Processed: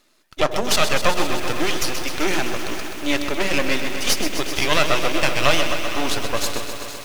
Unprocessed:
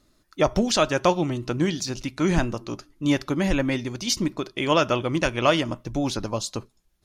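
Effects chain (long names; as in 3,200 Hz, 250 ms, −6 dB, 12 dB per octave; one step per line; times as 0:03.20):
high-pass filter 360 Hz 12 dB per octave
parametric band 2,600 Hz +6 dB 0.89 octaves
in parallel at +1.5 dB: brickwall limiter −14.5 dBFS, peak gain reduction 10 dB
on the sum: half-wave rectification
echo with a time of its own for lows and highs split 750 Hz, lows 86 ms, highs 465 ms, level −14 dB
feedback echo at a low word length 128 ms, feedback 80%, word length 6 bits, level −9 dB
level +2 dB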